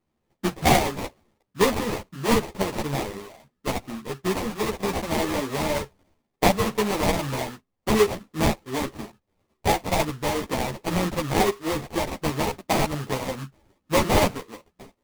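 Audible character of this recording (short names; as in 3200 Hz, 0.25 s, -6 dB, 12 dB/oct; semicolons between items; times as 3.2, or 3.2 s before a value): aliases and images of a low sample rate 1500 Hz, jitter 20%; a shimmering, thickened sound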